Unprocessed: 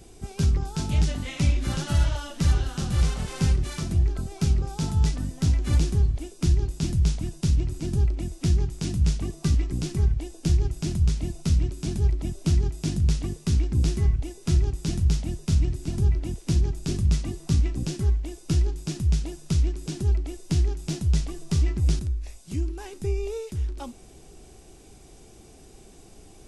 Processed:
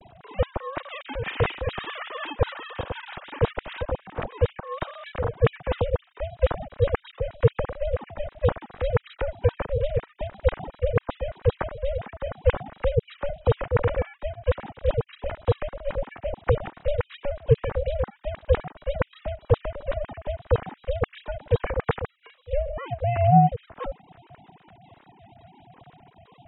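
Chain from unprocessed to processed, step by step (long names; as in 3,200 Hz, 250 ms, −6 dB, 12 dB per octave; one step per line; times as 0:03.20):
three sine waves on the formant tracks
ring modulation 290 Hz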